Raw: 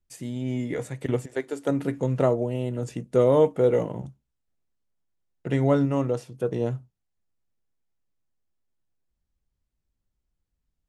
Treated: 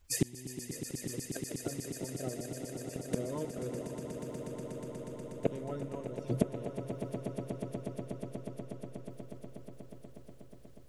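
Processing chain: coarse spectral quantiser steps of 30 dB; inverted gate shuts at -26 dBFS, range -31 dB; echo with a slow build-up 121 ms, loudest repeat 8, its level -11 dB; trim +11.5 dB

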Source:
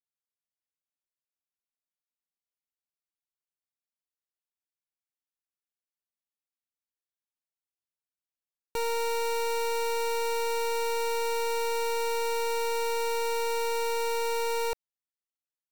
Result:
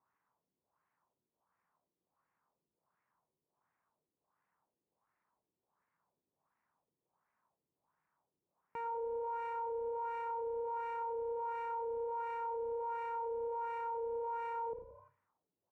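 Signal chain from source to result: in parallel at -4 dB: sample-and-hold 10×; on the sum: saturation -39 dBFS, distortion -14 dB; fifteen-band graphic EQ 160 Hz +7 dB, 1 kHz +11 dB, 4 kHz -9 dB, 10 kHz +11 dB; frequency-shifting echo 87 ms, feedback 39%, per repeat +32 Hz, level -15 dB; on a send at -15.5 dB: reverberation, pre-delay 52 ms; on the sum: LFO low-pass sine 1.4 Hz 360–2000 Hz; high-pass 55 Hz 12 dB/octave; peak limiter -38 dBFS, peak gain reduction 15.5 dB; trim +4.5 dB

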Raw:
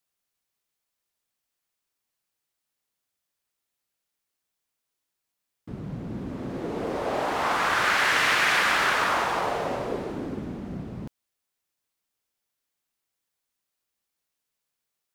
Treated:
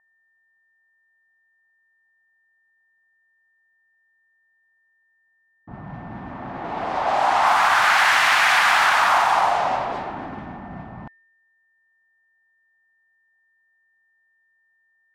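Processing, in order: whistle 1.8 kHz -55 dBFS; level-controlled noise filter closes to 690 Hz, open at -21.5 dBFS; in parallel at +1 dB: peak limiter -19 dBFS, peak gain reduction 9 dB; on the sum: resonant low shelf 600 Hz -8 dB, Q 3

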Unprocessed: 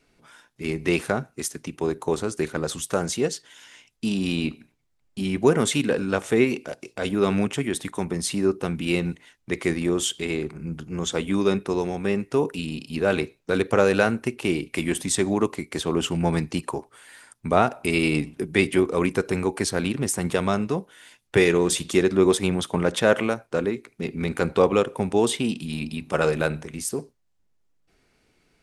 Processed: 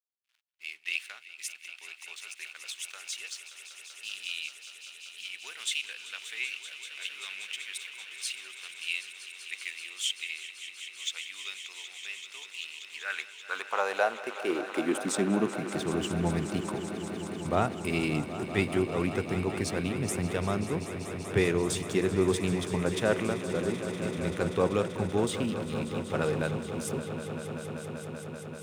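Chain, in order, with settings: hysteresis with a dead band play -38 dBFS; high-pass sweep 2.7 kHz -> 90 Hz, 12.69–16.04 s; echo with a slow build-up 193 ms, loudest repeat 5, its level -14 dB; trim -8.5 dB

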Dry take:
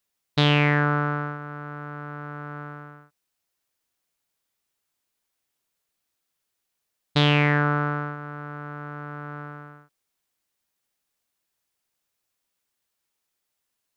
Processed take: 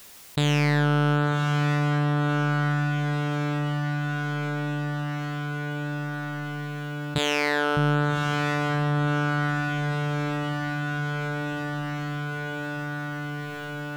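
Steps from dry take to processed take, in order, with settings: dynamic bell 1.2 kHz, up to -6 dB, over -37 dBFS, Q 2.2; peak limiter -17.5 dBFS, peak gain reduction 11 dB; overload inside the chain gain 23.5 dB; 7.18–7.77 s: brick-wall FIR high-pass 290 Hz; echo that smears into a reverb 1103 ms, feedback 63%, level -7.5 dB; level flattener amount 50%; trim +6.5 dB

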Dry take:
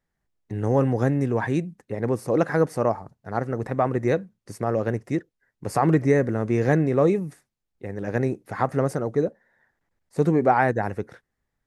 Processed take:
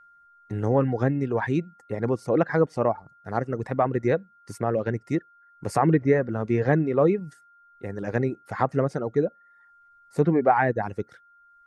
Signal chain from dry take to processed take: whistle 1.4 kHz -51 dBFS; low-pass that closes with the level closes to 3 kHz, closed at -16.5 dBFS; reverb removal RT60 0.71 s

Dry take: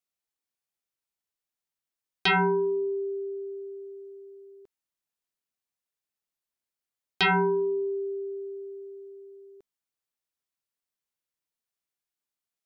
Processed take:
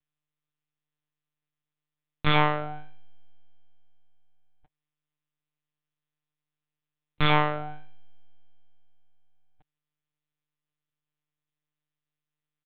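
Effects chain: comb 6.2 ms, depth 83%; full-wave rectifier; monotone LPC vocoder at 8 kHz 150 Hz

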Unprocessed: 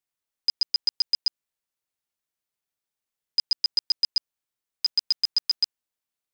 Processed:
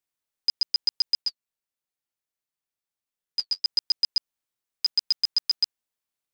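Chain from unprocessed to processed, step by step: 1.22–3.65 s: flange 1.5 Hz, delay 5.3 ms, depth 5.6 ms, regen -40%

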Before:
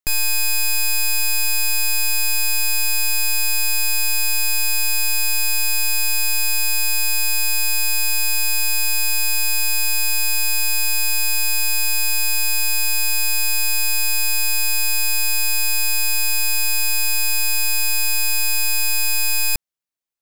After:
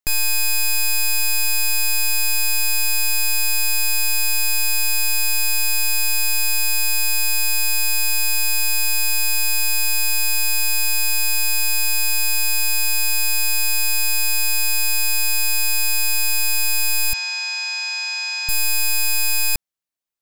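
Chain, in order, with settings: 17.13–18.49 s: elliptic band-pass 740–5900 Hz, stop band 50 dB

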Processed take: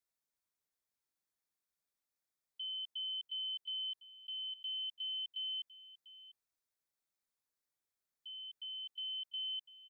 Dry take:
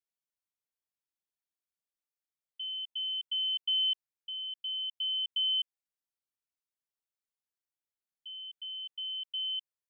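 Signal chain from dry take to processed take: peaking EQ 2.9 kHz -10.5 dB 0.21 oct; peak limiter -39.5 dBFS, peak gain reduction 7.5 dB; delay 697 ms -16.5 dB; trim +2.5 dB

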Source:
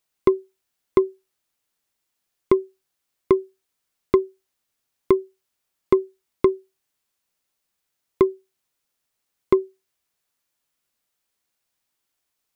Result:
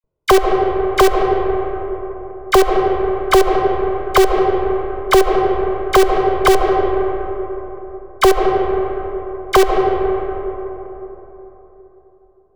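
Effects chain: comb filter that takes the minimum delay 2 ms; peaking EQ 1.7 kHz -13 dB 0.27 oct; level-controlled noise filter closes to 410 Hz, open at -20.5 dBFS; phase dispersion lows, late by 40 ms, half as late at 1.4 kHz; in parallel at -6 dB: integer overflow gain 21 dB; on the sum: band-passed feedback delay 70 ms, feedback 82%, band-pass 700 Hz, level -12.5 dB; on a send at -8 dB: reverberation RT60 3.7 s, pre-delay 95 ms; on the sum: loudness maximiser +17.5 dB; trim -1 dB

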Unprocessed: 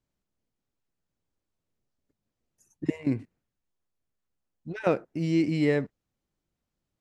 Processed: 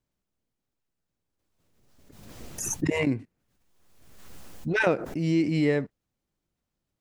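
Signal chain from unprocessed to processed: swell ahead of each attack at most 38 dB/s

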